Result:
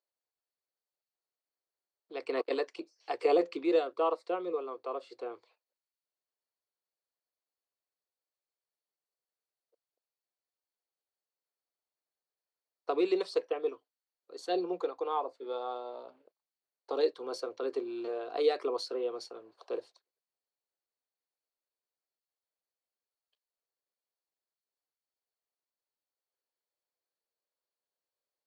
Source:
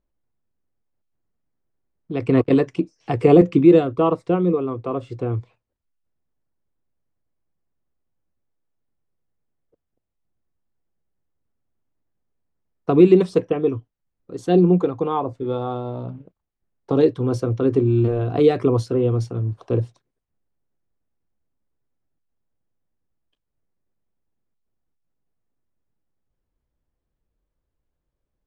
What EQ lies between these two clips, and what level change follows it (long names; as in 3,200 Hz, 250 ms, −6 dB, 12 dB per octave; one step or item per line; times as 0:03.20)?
high-pass filter 450 Hz 24 dB per octave
parametric band 4,400 Hz +14 dB 0.27 octaves
−8.5 dB